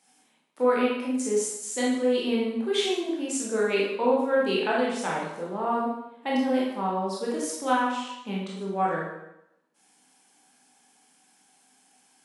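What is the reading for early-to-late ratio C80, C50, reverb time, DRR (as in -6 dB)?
4.5 dB, 1.0 dB, 0.85 s, -5.0 dB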